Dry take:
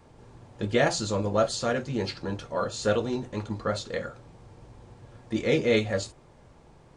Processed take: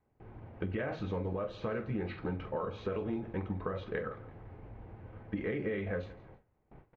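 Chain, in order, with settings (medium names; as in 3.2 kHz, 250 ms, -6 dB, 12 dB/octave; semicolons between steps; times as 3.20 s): peak limiter -19.5 dBFS, peak gain reduction 9 dB; pitch shift -1.5 st; doubling 44 ms -12.5 dB; compression 12:1, threshold -31 dBFS, peak gain reduction 8.5 dB; on a send: feedback delay 168 ms, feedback 42%, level -20 dB; on the sum: gate with hold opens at -43 dBFS; Chebyshev low-pass 2.3 kHz, order 3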